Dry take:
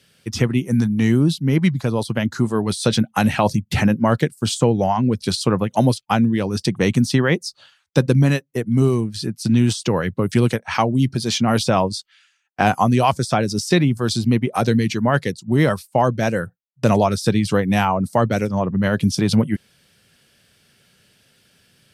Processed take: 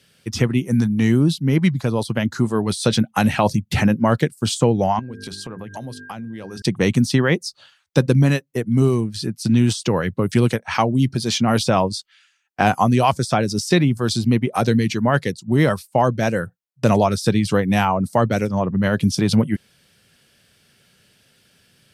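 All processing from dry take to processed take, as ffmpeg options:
-filter_complex "[0:a]asettb=1/sr,asplit=3[a][b][c];[a]atrim=end=4.994[d];[b]atrim=start=4.99:end=6.62,asetpts=PTS-STARTPTS,afade=t=in:d=0.004:c=qsin,afade=t=out:st=1.626:d=0.004:c=qsin,bandreject=f=50:t=h:w=6,bandreject=f=100:t=h:w=6,bandreject=f=150:t=h:w=6,bandreject=f=200:t=h:w=6,bandreject=f=250:t=h:w=6,bandreject=f=300:t=h:w=6,bandreject=f=350:t=h:w=6,bandreject=f=400:t=h:w=6,bandreject=f=450:t=h:w=6,aeval=exprs='val(0)+0.0126*sin(2*PI*1600*n/s)':c=same,acompressor=threshold=-29dB:ratio=8:attack=3.2:release=140:knee=1:detection=peak[e];[c]atrim=start=6.616[f];[d][e]acrossfade=d=0.004:c1=hsin:c2=qsin[g];[g][f]acrossfade=d=0.004:c1=qsin:c2=hsin"

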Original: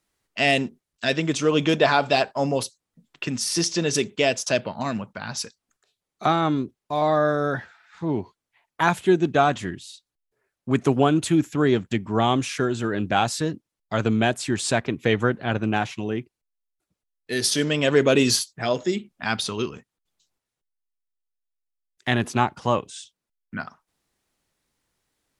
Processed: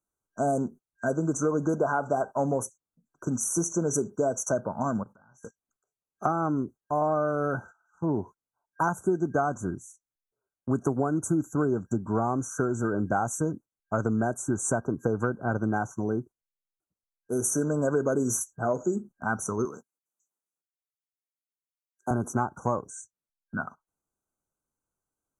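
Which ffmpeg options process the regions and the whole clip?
-filter_complex "[0:a]asettb=1/sr,asplit=3[a][b][c];[a]atrim=end=5.034[d];[b]atrim=start=5.03:end=5.43,asetpts=PTS-STARTPTS,afade=t=in:d=0.004:c=qsin,afade=t=out:st=0.396:d=0.004:c=qsin,asplit=2[e][f];[f]adelay=24,volume=-5dB[g];[e][g]amix=inputs=2:normalize=0,atrim=end_sample=17640,acompressor=threshold=-43dB:ratio=8:attack=3.2:release=140:knee=1:detection=peak[h];[c]atrim=start=5.426[i];[d][h]acrossfade=d=0.004:c1=hsin:c2=qsin[j];[j][i]acrossfade=d=0.004:c1=qsin:c2=hsin,asettb=1/sr,asplit=3[k][l][m];[k]atrim=end=19.654[n];[l]atrim=start=19.65:end=22.11,asetpts=PTS-STARTPTS,afade=t=in:d=0.004:c=qsin,afade=t=out:st=2.456:d=0.004:c=qsin,highpass=240,highshelf=f=4.5k:g=8.5[o];[m]atrim=start=22.106[p];[n][o]acrossfade=d=0.004:c1=hsin:c2=qsin[q];[q][p]acrossfade=d=0.004:c1=qsin:c2=hsin,agate=range=-12dB:threshold=-41dB:ratio=16:detection=peak,afftfilt=real='re*(1-between(b*sr/4096,1600,5800))':imag='im*(1-between(b*sr/4096,1600,5800))':win_size=4096:overlap=0.75,acompressor=threshold=-22dB:ratio=6"

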